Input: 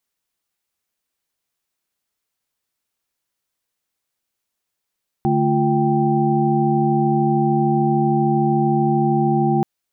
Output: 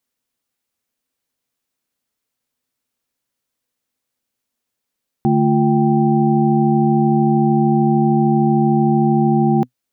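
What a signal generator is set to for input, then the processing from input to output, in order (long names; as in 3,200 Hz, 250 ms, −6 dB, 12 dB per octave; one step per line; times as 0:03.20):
held notes D3/A3/F4/G5 sine, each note −20 dBFS 4.38 s
thirty-one-band graphic EQ 125 Hz +6 dB, 250 Hz +11 dB, 500 Hz +5 dB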